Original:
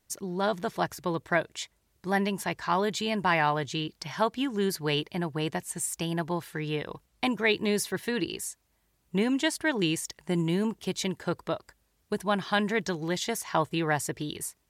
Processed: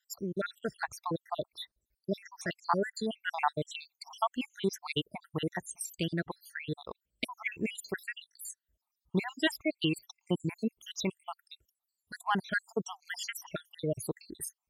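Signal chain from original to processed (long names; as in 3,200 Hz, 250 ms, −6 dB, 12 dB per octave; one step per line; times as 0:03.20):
time-frequency cells dropped at random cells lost 75%
reverb reduction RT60 1.9 s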